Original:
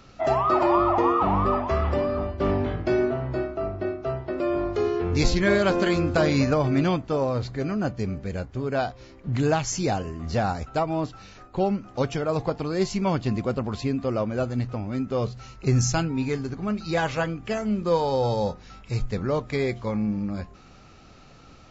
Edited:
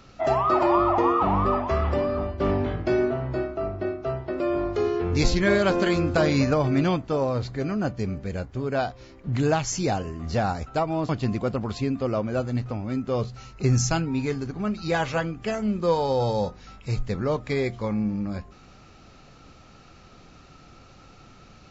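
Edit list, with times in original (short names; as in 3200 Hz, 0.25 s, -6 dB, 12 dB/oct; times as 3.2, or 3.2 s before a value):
11.09–13.12 cut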